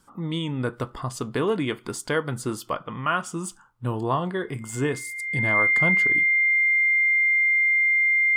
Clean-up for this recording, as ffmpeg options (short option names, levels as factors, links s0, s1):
-af "bandreject=f=2100:w=30"